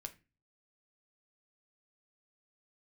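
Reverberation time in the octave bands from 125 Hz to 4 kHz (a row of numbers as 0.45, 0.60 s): 0.55, 0.45, 0.30, 0.25, 0.30, 0.25 s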